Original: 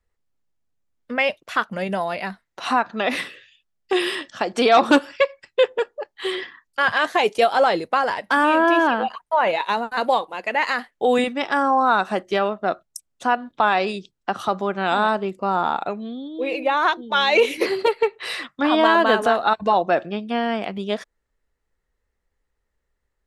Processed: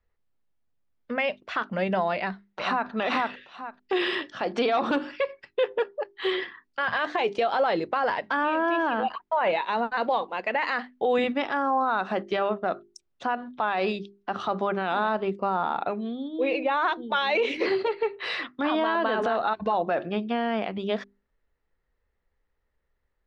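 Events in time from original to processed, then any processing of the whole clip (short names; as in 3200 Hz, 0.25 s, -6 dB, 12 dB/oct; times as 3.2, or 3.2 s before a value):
2.15–2.91 echo throw 0.44 s, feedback 15%, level -1.5 dB
whole clip: Bessel low-pass 3500 Hz, order 4; notches 50/100/150/200/250/300/350/400 Hz; limiter -16 dBFS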